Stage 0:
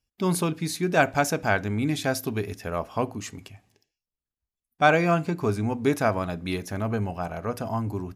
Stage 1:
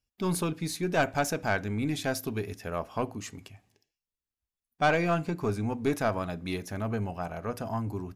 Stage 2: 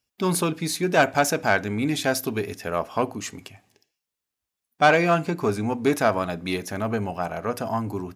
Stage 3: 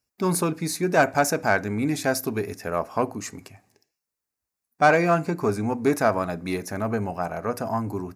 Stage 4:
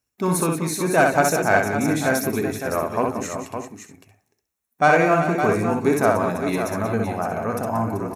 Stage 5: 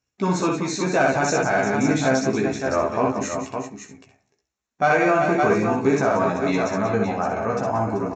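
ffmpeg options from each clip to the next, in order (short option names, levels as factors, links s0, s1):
-af "aeval=exprs='(tanh(4.47*val(0)+0.3)-tanh(0.3))/4.47':c=same,volume=0.708"
-af "highpass=f=210:p=1,volume=2.51"
-af "equalizer=f=3200:w=2.8:g=-13"
-filter_complex "[0:a]bandreject=f=4800:w=5.1,asplit=2[s0][s1];[s1]aecho=0:1:61|181|384|562|630:0.668|0.316|0.266|0.398|0.126[s2];[s0][s2]amix=inputs=2:normalize=0,volume=1.12"
-filter_complex "[0:a]alimiter=limit=0.282:level=0:latency=1:release=20,asplit=2[s0][s1];[s1]adelay=15,volume=0.708[s2];[s0][s2]amix=inputs=2:normalize=0,aresample=16000,aresample=44100"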